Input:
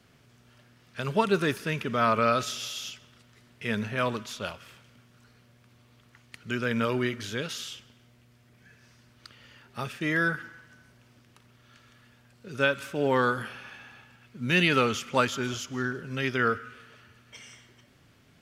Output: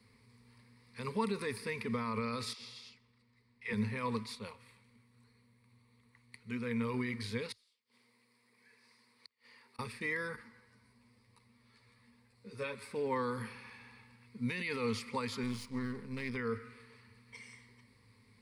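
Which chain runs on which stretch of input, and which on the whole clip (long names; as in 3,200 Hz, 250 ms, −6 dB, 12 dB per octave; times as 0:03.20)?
0:02.53–0:03.73: high-frequency loss of the air 65 metres + all-pass dispersion lows, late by 74 ms, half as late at 440 Hz + expander for the loud parts, over −47 dBFS
0:04.35–0:06.94: notch filter 5,000 Hz, Q 6.7 + flanger 1.8 Hz, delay 3.6 ms, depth 4.9 ms, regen +77%
0:07.52–0:09.79: high-pass filter 390 Hz + gate with flip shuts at −43 dBFS, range −28 dB
0:10.36–0:12.91: parametric band 650 Hz +6.5 dB 0.44 octaves + string-ensemble chorus
0:15.43–0:16.36: gain on one half-wave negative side −12 dB + parametric band 210 Hz +5.5 dB 1.1 octaves
whole clip: parametric band 590 Hz −8.5 dB 0.33 octaves; brickwall limiter −20.5 dBFS; EQ curve with evenly spaced ripples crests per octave 0.93, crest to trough 15 dB; level −7.5 dB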